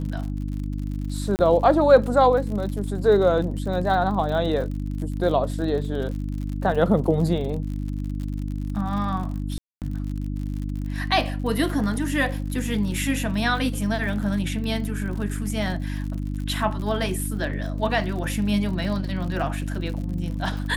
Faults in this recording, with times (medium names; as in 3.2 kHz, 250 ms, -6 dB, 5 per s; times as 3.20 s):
crackle 68 per s -32 dBFS
hum 50 Hz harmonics 6 -28 dBFS
1.36–1.39 s: dropout 29 ms
9.58–9.82 s: dropout 238 ms